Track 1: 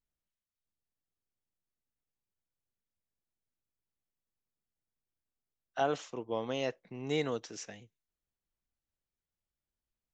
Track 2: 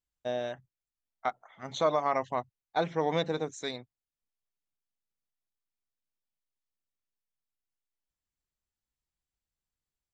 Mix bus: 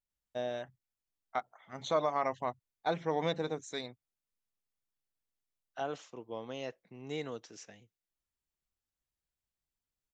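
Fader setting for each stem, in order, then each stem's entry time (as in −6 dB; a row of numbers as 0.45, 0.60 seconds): −6.5, −3.5 decibels; 0.00, 0.10 seconds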